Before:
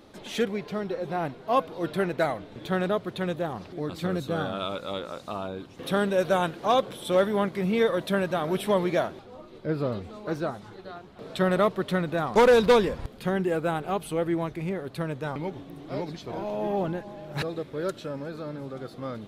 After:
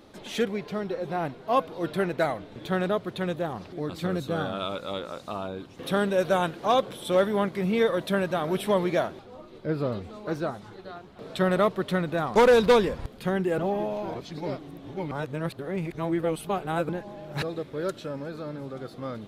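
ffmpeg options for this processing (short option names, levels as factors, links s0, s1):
-filter_complex "[0:a]asplit=3[s0][s1][s2];[s0]atrim=end=13.582[s3];[s1]atrim=start=13.578:end=16.892,asetpts=PTS-STARTPTS,areverse[s4];[s2]atrim=start=16.888[s5];[s3][s4]acrossfade=d=0.004:c1=hsin:c2=hsin[s6];[s6][s5]acrossfade=d=0.004:c1=hsin:c2=hsin"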